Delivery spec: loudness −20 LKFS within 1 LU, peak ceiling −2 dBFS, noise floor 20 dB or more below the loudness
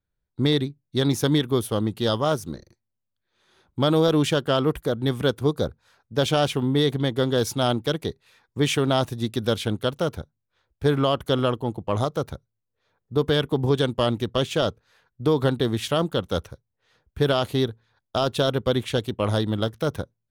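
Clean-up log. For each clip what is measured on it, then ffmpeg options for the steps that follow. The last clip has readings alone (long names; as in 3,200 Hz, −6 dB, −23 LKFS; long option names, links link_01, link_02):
integrated loudness −24.0 LKFS; sample peak −9.5 dBFS; target loudness −20.0 LKFS
→ -af "volume=4dB"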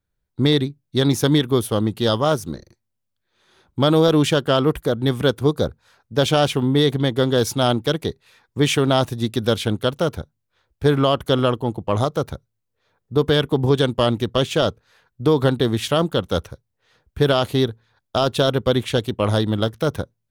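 integrated loudness −20.0 LKFS; sample peak −5.5 dBFS; background noise floor −77 dBFS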